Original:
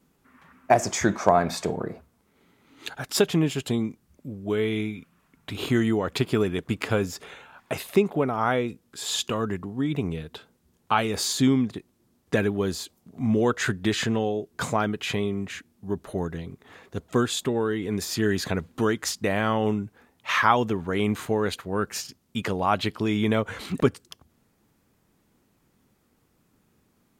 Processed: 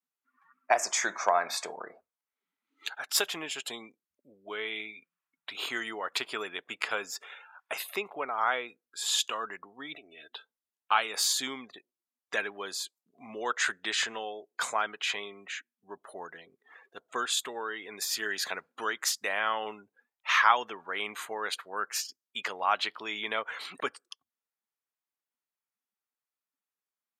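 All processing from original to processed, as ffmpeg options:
-filter_complex "[0:a]asettb=1/sr,asplit=3[s0][s1][s2];[s0]atrim=end=9.944[s3];[s1]atrim=start=9.94:end=10.34,asetpts=PTS-STARTPTS,afade=t=in:d=0.004:c=qsin,afade=t=out:st=0.396:d=0.004:c=qsin,asuperstop=centerf=990:order=4:qfactor=3.1,aecho=1:1:3.1:0.59,atrim=end_sample=17640,acompressor=threshold=0.0224:ratio=10:attack=3.2:release=140:knee=1:detection=peak[s4];[s2]atrim=start=10.336[s5];[s3][s4]acrossfade=d=0.004:c1=hsin:c2=qsin[s6];[s6][s5]acrossfade=d=0.004:c1=qsin:c2=hsin,afftdn=nr=24:nf=-47,highpass=960,equalizer=f=12000:t=o:w=0.23:g=5"

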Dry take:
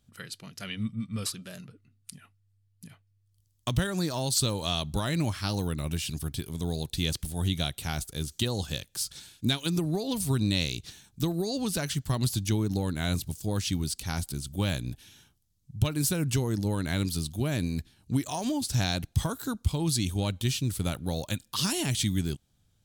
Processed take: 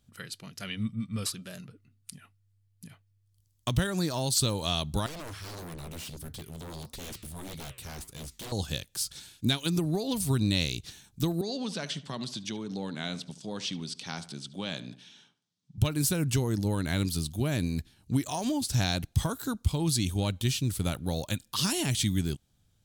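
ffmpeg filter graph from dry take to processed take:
-filter_complex "[0:a]asettb=1/sr,asplit=3[s0][s1][s2];[s0]atrim=end=5.064[s3];[s1]atrim=start=5.06:end=8.52,asetpts=PTS-STARTPTS,afade=t=in:d=0.004:c=qsin,afade=t=out:st=3.456:d=0.004:c=qsin,flanger=delay=5.3:depth=9.9:regen=-85:speed=1.6:shape=triangular,aeval=exprs='0.0168*(abs(mod(val(0)/0.0168+3,4)-2)-1)':c=same[s4];[s2]atrim=start=8.516[s5];[s3][s4]acrossfade=d=0.004:c1=hsin:c2=qsin[s6];[s6][s5]acrossfade=d=0.004:c1=qsin:c2=hsin,asettb=1/sr,asplit=3[s7][s8][s9];[s7]atrim=end=11.414[s10];[s8]atrim=start=11.41:end=15.78,asetpts=PTS-STARTPTS,afade=t=in:d=0.004:c=qsin,afade=t=out:st=4.366:d=0.004:c=qsin,acompressor=threshold=0.0316:ratio=2:attack=3.2:release=140:knee=1:detection=peak,highpass=f=170:w=0.5412,highpass=f=170:w=1.3066,equalizer=f=320:t=q:w=4:g=-5,equalizer=f=3400:t=q:w=4:g=4,equalizer=f=7000:t=q:w=4:g=-5,lowpass=f=7200:w=0.5412,lowpass=f=7200:w=1.3066,asplit=2[s11][s12];[s12]adelay=72,lowpass=f=2900:p=1,volume=0.178,asplit=2[s13][s14];[s14]adelay=72,lowpass=f=2900:p=1,volume=0.4,asplit=2[s15][s16];[s16]adelay=72,lowpass=f=2900:p=1,volume=0.4,asplit=2[s17][s18];[s18]adelay=72,lowpass=f=2900:p=1,volume=0.4[s19];[s11][s13][s15][s17][s19]amix=inputs=5:normalize=0,atrim=end_sample=192717[s20];[s9]atrim=start=15.776[s21];[s10][s20]acrossfade=d=0.004:c1=hsin:c2=qsin[s22];[s22][s21]acrossfade=d=0.004:c1=qsin:c2=hsin"

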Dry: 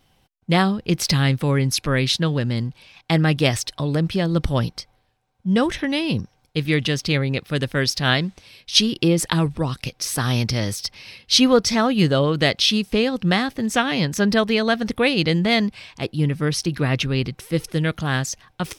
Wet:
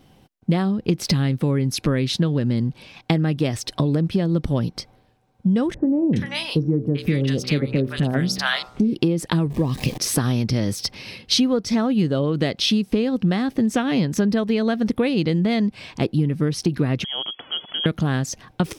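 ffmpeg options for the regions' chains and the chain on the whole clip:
-filter_complex "[0:a]asettb=1/sr,asplit=3[s0][s1][s2];[s0]atrim=end=5.744[s3];[s1]atrim=start=5.74:end=8.95,asetpts=PTS-STARTPTS,afade=t=in:d=0.004:c=qsin,afade=t=out:st=3.206:d=0.004:c=qsin,bandreject=f=63.14:t=h:w=4,bandreject=f=126.28:t=h:w=4,bandreject=f=189.42:t=h:w=4,bandreject=f=252.56:t=h:w=4,bandreject=f=315.7:t=h:w=4,bandreject=f=378.84:t=h:w=4,bandreject=f=441.98:t=h:w=4,bandreject=f=505.12:t=h:w=4,bandreject=f=568.26:t=h:w=4,bandreject=f=631.4:t=h:w=4,bandreject=f=694.54:t=h:w=4,bandreject=f=757.68:t=h:w=4,bandreject=f=820.82:t=h:w=4,bandreject=f=883.96:t=h:w=4,bandreject=f=947.1:t=h:w=4,bandreject=f=1010.24:t=h:w=4,bandreject=f=1073.38:t=h:w=4,bandreject=f=1136.52:t=h:w=4,bandreject=f=1199.66:t=h:w=4,bandreject=f=1262.8:t=h:w=4,bandreject=f=1325.94:t=h:w=4,bandreject=f=1389.08:t=h:w=4,bandreject=f=1452.22:t=h:w=4,acrossover=split=820|2700[s4][s5][s6];[s5]adelay=390[s7];[s6]adelay=420[s8];[s4][s7][s8]amix=inputs=3:normalize=0,atrim=end_sample=141561[s9];[s2]atrim=start=8.946[s10];[s3][s9]acrossfade=d=0.004:c1=hsin:c2=qsin[s11];[s11][s10]acrossfade=d=0.004:c1=qsin:c2=hsin,asettb=1/sr,asplit=3[s12][s13][s14];[s12]atrim=end=9.504[s15];[s13]atrim=start=9.5:end=9.98,asetpts=PTS-STARTPTS,afade=t=in:d=0.004:c=qsin,afade=t=out:st=0.476:d=0.004:c=qsin,aeval=exprs='val(0)+0.5*0.0282*sgn(val(0))':c=same,asuperstop=centerf=1400:order=4:qfactor=4[s16];[s14]atrim=start=9.976[s17];[s15][s16]acrossfade=d=0.004:c1=hsin:c2=qsin[s18];[s18][s17]acrossfade=d=0.004:c1=qsin:c2=hsin,asettb=1/sr,asplit=3[s19][s20][s21];[s19]atrim=end=17.044[s22];[s20]atrim=start=17.04:end=17.86,asetpts=PTS-STARTPTS,afade=t=in:d=0.004:c=qsin,afade=t=out:st=0.816:d=0.004:c=qsin,acompressor=threshold=0.0398:ratio=3:attack=3.2:release=140:knee=1:detection=peak,lowpass=f=2900:t=q:w=0.5098,lowpass=f=2900:t=q:w=0.6013,lowpass=f=2900:t=q:w=0.9,lowpass=f=2900:t=q:w=2.563,afreqshift=-3400[s23];[s21]atrim=start=17.856[s24];[s22][s23]acrossfade=d=0.004:c1=hsin:c2=qsin[s25];[s25][s24]acrossfade=d=0.004:c1=qsin:c2=hsin,equalizer=f=250:t=o:w=2.7:g=11,acompressor=threshold=0.112:ratio=10,volume=1.33"

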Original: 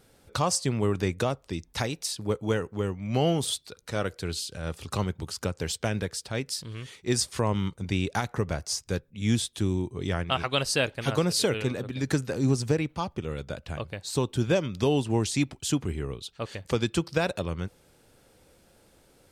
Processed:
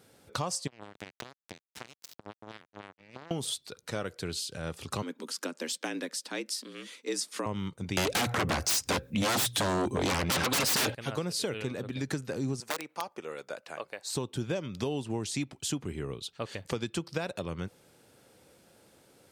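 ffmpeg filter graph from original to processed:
-filter_complex "[0:a]asettb=1/sr,asplit=3[s0][s1][s2];[s0]atrim=end=0.674[s3];[s1]atrim=start=0.67:end=3.31,asetpts=PTS-STARTPTS,afade=t=in:d=0.004:c=qsin,afade=t=out:st=2.636:d=0.004:c=qsin,lowpass=5400,acompressor=threshold=0.0178:ratio=10:attack=3.2:release=140:knee=1:detection=peak,acrusher=bits=4:mix=0:aa=0.5[s4];[s2]atrim=start=3.306[s5];[s3][s4]acrossfade=d=0.004:c1=hsin:c2=qsin[s6];[s6][s5]acrossfade=d=0.004:c1=qsin:c2=hsin,asettb=1/sr,asplit=3[s7][s8][s9];[s7]atrim=end=5.024[s10];[s8]atrim=start=5.02:end=7.46,asetpts=PTS-STARTPTS,afade=t=in:d=0.004:c=qsin,afade=t=out:st=2.436:d=0.004:c=qsin,highpass=f=170:w=0.5412,highpass=f=170:w=1.3066,equalizer=f=580:t=o:w=0.74:g=-7.5,afreqshift=74[s11];[s9]atrim=start=7.456[s12];[s10][s11]acrossfade=d=0.004:c1=hsin:c2=qsin[s13];[s13][s12]acrossfade=d=0.004:c1=qsin:c2=hsin,asettb=1/sr,asplit=3[s14][s15][s16];[s14]atrim=end=7.974[s17];[s15]atrim=start=7.97:end=10.95,asetpts=PTS-STARTPTS,afade=t=in:d=0.004:c=qsin,afade=t=out:st=2.976:d=0.004:c=qsin,bandreject=f=60:t=h:w=6,bandreject=f=120:t=h:w=6,aecho=1:1:3.8:0.37,atrim=end_sample=131418,aeval=exprs='0.282*sin(PI/2*10*val(0)/0.282)':c=same[s18];[s16]atrim=start=10.946[s19];[s17][s18]acrossfade=d=0.004:c1=hsin:c2=qsin[s20];[s20][s19]acrossfade=d=0.004:c1=qsin:c2=hsin,asettb=1/sr,asplit=3[s21][s22][s23];[s21]atrim=end=12.604[s24];[s22]atrim=start=12.6:end=14.1,asetpts=PTS-STARTPTS,afade=t=in:d=0.004:c=qsin,afade=t=out:st=1.496:d=0.004:c=qsin,equalizer=f=3300:t=o:w=0.58:g=-7,aeval=exprs='(mod(7.94*val(0)+1,2)-1)/7.94':c=same,highpass=480[s25];[s23]atrim=start=14.096[s26];[s24][s25]acrossfade=d=0.004:c1=hsin:c2=qsin[s27];[s27][s26]acrossfade=d=0.004:c1=qsin:c2=hsin,highpass=110,acompressor=threshold=0.0282:ratio=3"

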